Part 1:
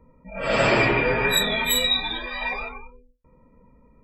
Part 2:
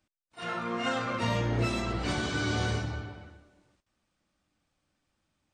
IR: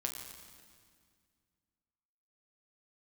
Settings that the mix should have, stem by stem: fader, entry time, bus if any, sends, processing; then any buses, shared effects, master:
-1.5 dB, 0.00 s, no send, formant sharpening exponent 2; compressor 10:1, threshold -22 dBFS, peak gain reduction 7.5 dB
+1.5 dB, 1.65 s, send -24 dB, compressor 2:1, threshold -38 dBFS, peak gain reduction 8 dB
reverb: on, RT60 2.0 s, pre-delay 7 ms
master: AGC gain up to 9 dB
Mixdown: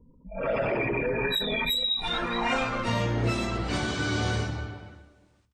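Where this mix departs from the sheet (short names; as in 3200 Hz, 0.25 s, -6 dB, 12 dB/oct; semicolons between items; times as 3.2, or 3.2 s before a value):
stem 2: missing compressor 2:1, threshold -38 dBFS, peak gain reduction 8 dB; master: missing AGC gain up to 9 dB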